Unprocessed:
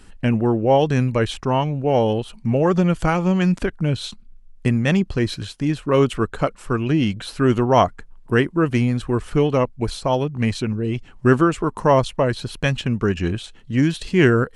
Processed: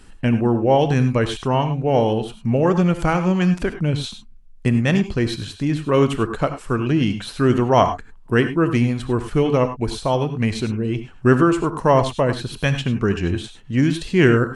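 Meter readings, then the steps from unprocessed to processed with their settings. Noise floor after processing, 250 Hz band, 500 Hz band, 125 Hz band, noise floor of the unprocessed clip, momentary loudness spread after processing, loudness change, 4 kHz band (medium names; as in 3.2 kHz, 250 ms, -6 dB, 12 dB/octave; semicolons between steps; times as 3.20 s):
-43 dBFS, +1.0 dB, +0.5 dB, +1.0 dB, -45 dBFS, 7 LU, +0.5 dB, +0.5 dB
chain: gated-style reverb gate 120 ms rising, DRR 9 dB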